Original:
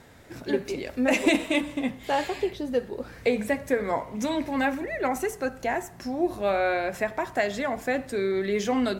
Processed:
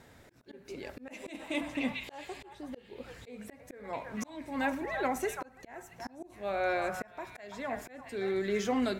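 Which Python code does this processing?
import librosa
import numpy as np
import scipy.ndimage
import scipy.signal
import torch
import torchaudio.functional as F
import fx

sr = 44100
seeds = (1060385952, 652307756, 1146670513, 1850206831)

y = fx.echo_stepped(x, sr, ms=336, hz=1100.0, octaves=1.4, feedback_pct=70, wet_db=-4)
y = fx.auto_swell(y, sr, attack_ms=474.0)
y = F.gain(torch.from_numpy(y), -5.0).numpy()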